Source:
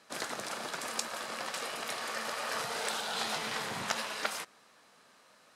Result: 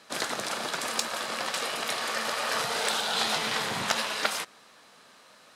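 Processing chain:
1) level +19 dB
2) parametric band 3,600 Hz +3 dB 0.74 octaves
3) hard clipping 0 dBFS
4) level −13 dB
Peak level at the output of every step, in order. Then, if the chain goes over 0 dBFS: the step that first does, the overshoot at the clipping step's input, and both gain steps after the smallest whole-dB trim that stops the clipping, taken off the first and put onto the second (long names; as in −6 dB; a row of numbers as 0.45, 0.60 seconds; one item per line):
+7.5, +8.0, 0.0, −13.0 dBFS
step 1, 8.0 dB
step 1 +11 dB, step 4 −5 dB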